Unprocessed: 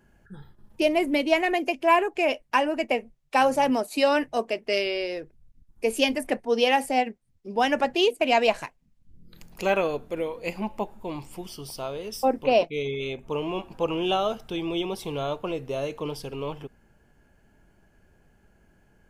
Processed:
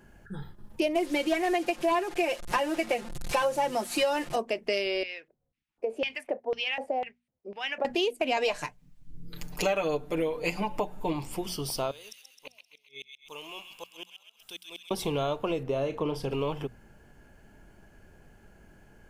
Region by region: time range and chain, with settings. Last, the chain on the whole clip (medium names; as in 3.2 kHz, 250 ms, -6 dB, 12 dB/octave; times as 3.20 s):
0.95–4.36 s: one-bit delta coder 64 kbps, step -35 dBFS + comb 5.7 ms, depth 91%
5.03–7.85 s: compression 2.5:1, threshold -24 dBFS + LFO band-pass square 2 Hz 580–2500 Hz
8.36–11.13 s: dynamic bell 6 kHz, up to +5 dB, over -47 dBFS, Q 0.98 + comb 6.7 ms, depth 82%
11.91–14.91 s: pre-emphasis filter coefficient 0.97 + inverted gate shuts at -34 dBFS, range -36 dB + feedback echo behind a high-pass 131 ms, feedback 53%, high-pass 1.8 kHz, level -5 dB
15.63–16.31 s: treble shelf 3.3 kHz -10.5 dB + doubling 37 ms -12.5 dB
whole clip: hum notches 60/120/180/240 Hz; compression 4:1, threshold -32 dBFS; trim +5.5 dB